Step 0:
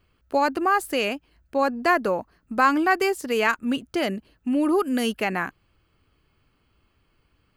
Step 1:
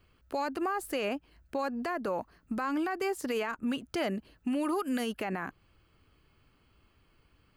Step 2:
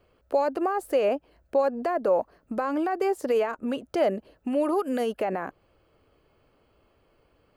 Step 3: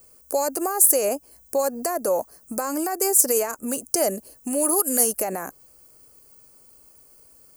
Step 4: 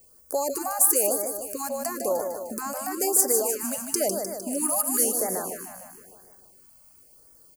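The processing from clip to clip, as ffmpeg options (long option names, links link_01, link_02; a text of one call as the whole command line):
ffmpeg -i in.wav -filter_complex "[0:a]acrossover=split=720|1500[link_01][link_02][link_03];[link_01]acompressor=threshold=-30dB:ratio=4[link_04];[link_02]acompressor=threshold=-31dB:ratio=4[link_05];[link_03]acompressor=threshold=-38dB:ratio=4[link_06];[link_04][link_05][link_06]amix=inputs=3:normalize=0,alimiter=limit=-23.5dB:level=0:latency=1:release=50" out.wav
ffmpeg -i in.wav -af "equalizer=frequency=560:width_type=o:width=1.4:gain=15,volume=-2.5dB" out.wav
ffmpeg -i in.wav -af "aexciter=amount=15.7:drive=9.7:freq=5600" out.wav
ffmpeg -i in.wav -filter_complex "[0:a]asplit=2[link_01][link_02];[link_02]aecho=0:1:152|304|456|608|760|912|1064|1216:0.501|0.296|0.174|0.103|0.0607|0.0358|0.0211|0.0125[link_03];[link_01][link_03]amix=inputs=2:normalize=0,afftfilt=real='re*(1-between(b*sr/1024,350*pow(3300/350,0.5+0.5*sin(2*PI*0.99*pts/sr))/1.41,350*pow(3300/350,0.5+0.5*sin(2*PI*0.99*pts/sr))*1.41))':imag='im*(1-between(b*sr/1024,350*pow(3300/350,0.5+0.5*sin(2*PI*0.99*pts/sr))/1.41,350*pow(3300/350,0.5+0.5*sin(2*PI*0.99*pts/sr))*1.41))':win_size=1024:overlap=0.75,volume=-3.5dB" out.wav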